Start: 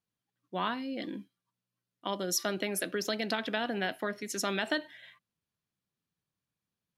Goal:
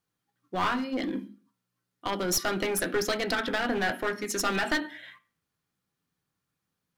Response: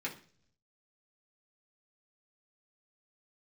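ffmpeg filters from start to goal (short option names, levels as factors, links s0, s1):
-filter_complex "[0:a]asplit=2[s0][s1];[s1]highpass=190,equalizer=f=240:t=q:w=4:g=10,equalizer=f=810:t=q:w=4:g=6,equalizer=f=1300:t=q:w=4:g=10,lowpass=f=3500:w=0.5412,lowpass=f=3500:w=1.3066[s2];[1:a]atrim=start_sample=2205,afade=t=out:st=0.37:d=0.01,atrim=end_sample=16758[s3];[s2][s3]afir=irnorm=-1:irlink=0,volume=0.335[s4];[s0][s4]amix=inputs=2:normalize=0,aeval=exprs='clip(val(0),-1,0.0251)':c=same,volume=1.88"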